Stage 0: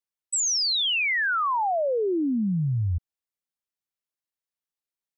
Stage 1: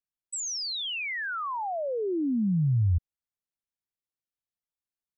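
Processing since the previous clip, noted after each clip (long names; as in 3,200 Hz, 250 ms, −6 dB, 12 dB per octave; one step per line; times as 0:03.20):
low-shelf EQ 290 Hz +11.5 dB
level −8.5 dB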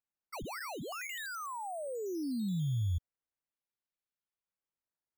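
sample-and-hold swept by an LFO 9×, swing 100% 0.44 Hz
level −8.5 dB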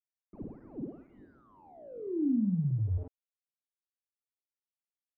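flutter between parallel walls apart 9.3 metres, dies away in 0.43 s
centre clipping without the shift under −41.5 dBFS
low-pass filter sweep 290 Hz → 1,600 Hz, 0:02.76–0:03.50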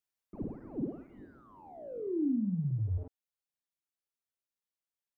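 speech leveller within 4 dB 0.5 s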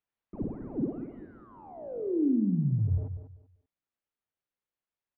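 high-frequency loss of the air 350 metres
on a send: repeating echo 194 ms, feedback 23%, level −10 dB
on the sum: level +5 dB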